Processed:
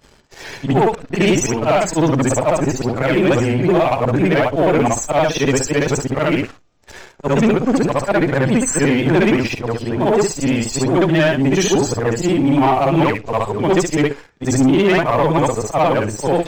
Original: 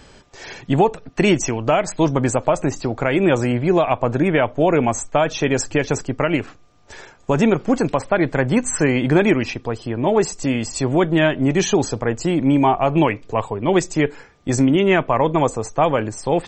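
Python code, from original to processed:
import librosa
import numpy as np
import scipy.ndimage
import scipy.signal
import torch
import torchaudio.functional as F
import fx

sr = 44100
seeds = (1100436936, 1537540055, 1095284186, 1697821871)

y = fx.frame_reverse(x, sr, frame_ms=151.0)
y = fx.vibrato(y, sr, rate_hz=7.9, depth_cents=47.0)
y = fx.leveller(y, sr, passes=2)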